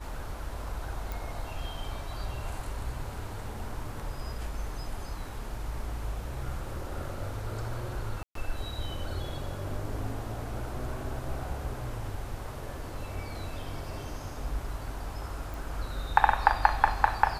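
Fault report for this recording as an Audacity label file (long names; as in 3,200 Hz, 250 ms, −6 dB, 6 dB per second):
1.120000	1.120000	click
8.230000	8.350000	drop-out 123 ms
15.540000	15.540000	click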